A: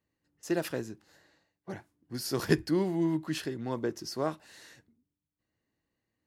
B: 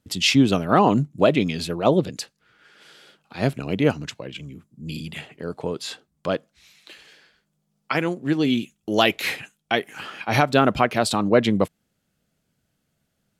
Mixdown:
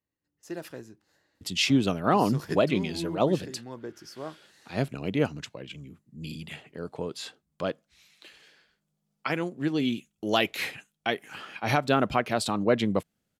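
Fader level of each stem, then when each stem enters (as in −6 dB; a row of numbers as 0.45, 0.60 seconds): −7.0, −6.0 decibels; 0.00, 1.35 seconds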